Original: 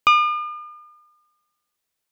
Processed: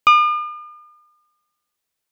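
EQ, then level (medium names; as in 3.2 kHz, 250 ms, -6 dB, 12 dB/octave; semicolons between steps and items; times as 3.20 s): dynamic bell 1.5 kHz, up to +6 dB, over -30 dBFS, Q 1.9; 0.0 dB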